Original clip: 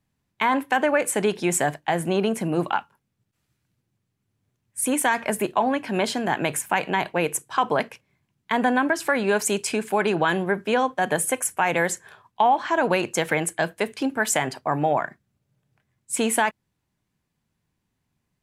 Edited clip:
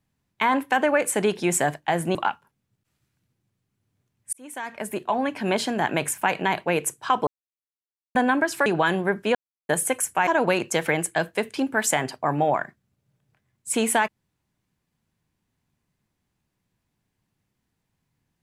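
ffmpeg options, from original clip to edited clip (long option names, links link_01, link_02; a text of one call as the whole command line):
ffmpeg -i in.wav -filter_complex "[0:a]asplit=9[link_01][link_02][link_03][link_04][link_05][link_06][link_07][link_08][link_09];[link_01]atrim=end=2.152[link_10];[link_02]atrim=start=2.628:end=4.81,asetpts=PTS-STARTPTS,afade=type=out:start_time=2.178:duration=0.004:curve=hsin[link_11];[link_03]atrim=start=4.81:end=7.75,asetpts=PTS-STARTPTS,afade=type=in:duration=1.12,afade=type=out:start_time=2.936:duration=0.004:curve=hsin[link_12];[link_04]atrim=start=7.75:end=8.63,asetpts=PTS-STARTPTS,volume=0[link_13];[link_05]atrim=start=8.63:end=9.142,asetpts=PTS-STARTPTS,afade=type=in:duration=0.004:curve=hsin[link_14];[link_06]atrim=start=10.078:end=10.77,asetpts=PTS-STARTPTS,afade=type=out:start_time=0.688:duration=0.004:curve=hsin[link_15];[link_07]atrim=start=10.77:end=11.11,asetpts=PTS-STARTPTS,volume=0[link_16];[link_08]atrim=start=11.11:end=11.692,asetpts=PTS-STARTPTS,afade=type=in:duration=0.004:curve=hsin[link_17];[link_09]atrim=start=12.698[link_18];[link_11][link_12][link_13][link_14]concat=n=4:v=0:a=1[link_19];[link_10][link_19]acrossfade=duration=0.004:curve1=hsin:curve2=hsin[link_20];[link_15][link_16][link_17]concat=n=3:v=0:a=1[link_21];[link_20][link_21]acrossfade=duration=0.004:curve1=hsin:curve2=hsin[link_22];[link_22][link_18]acrossfade=duration=0.004:curve1=hsin:curve2=hsin" out.wav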